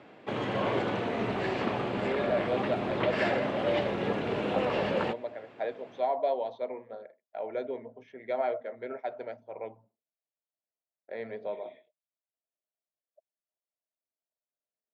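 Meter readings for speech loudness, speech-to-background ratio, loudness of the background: −36.0 LKFS, −5.0 dB, −31.0 LKFS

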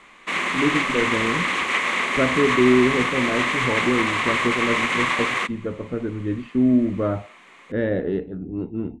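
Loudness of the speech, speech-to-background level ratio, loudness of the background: −24.0 LKFS, −2.5 dB, −21.5 LKFS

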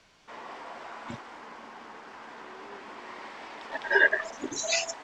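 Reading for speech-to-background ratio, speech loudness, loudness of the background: 17.0 dB, −26.5 LKFS, −43.5 LKFS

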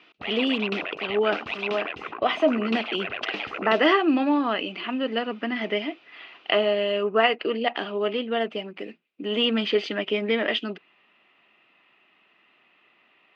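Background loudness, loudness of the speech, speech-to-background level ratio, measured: −32.0 LKFS, −25.5 LKFS, 6.5 dB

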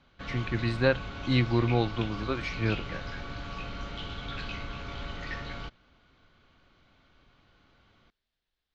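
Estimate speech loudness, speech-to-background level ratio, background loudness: −29.5 LKFS, 9.0 dB, −38.5 LKFS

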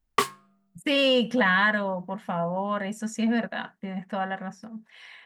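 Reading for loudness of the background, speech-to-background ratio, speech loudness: −28.5 LKFS, 2.5 dB, −26.0 LKFS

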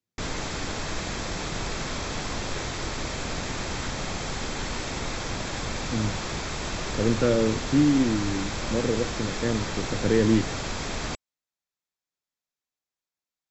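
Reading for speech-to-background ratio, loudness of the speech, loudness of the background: 5.5 dB, −26.0 LKFS, −31.5 LKFS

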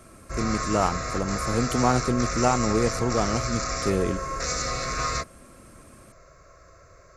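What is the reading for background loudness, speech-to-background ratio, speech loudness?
−29.0 LKFS, 2.5 dB, −26.5 LKFS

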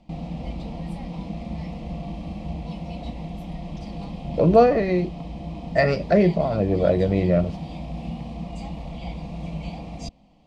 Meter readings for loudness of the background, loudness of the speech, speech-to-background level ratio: −34.0 LKFS, −20.5 LKFS, 13.5 dB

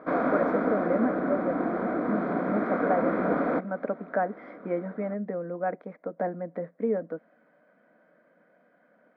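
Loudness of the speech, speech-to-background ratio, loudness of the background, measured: −32.5 LKFS, −4.5 dB, −28.0 LKFS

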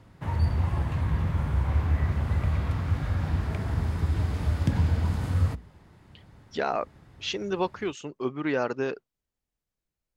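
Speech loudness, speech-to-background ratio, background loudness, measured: −31.0 LKFS, −3.5 dB, −27.5 LKFS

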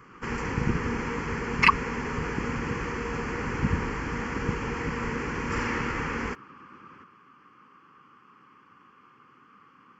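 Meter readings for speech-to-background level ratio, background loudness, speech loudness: 7.5 dB, −30.5 LKFS, −23.0 LKFS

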